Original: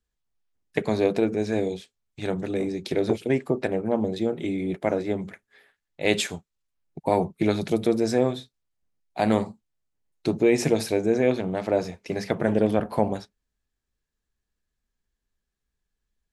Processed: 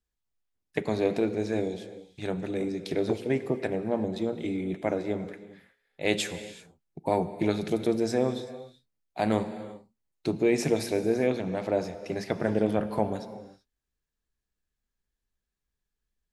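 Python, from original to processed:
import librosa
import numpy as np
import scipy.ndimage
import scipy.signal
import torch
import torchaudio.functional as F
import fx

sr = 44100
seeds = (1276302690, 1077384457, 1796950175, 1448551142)

y = fx.rev_gated(x, sr, seeds[0], gate_ms=410, shape='flat', drr_db=11.5)
y = y * 10.0 ** (-4.0 / 20.0)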